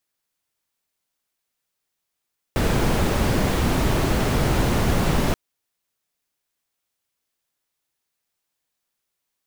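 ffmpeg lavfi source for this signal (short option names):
-f lavfi -i "anoisesrc=c=brown:a=0.495:d=2.78:r=44100:seed=1"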